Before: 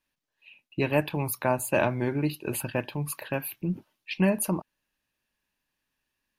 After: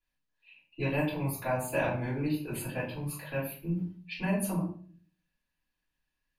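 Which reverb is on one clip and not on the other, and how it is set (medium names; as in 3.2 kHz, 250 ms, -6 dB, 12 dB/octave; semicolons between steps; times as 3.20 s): simulated room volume 40 m³, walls mixed, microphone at 3.1 m; trim -19 dB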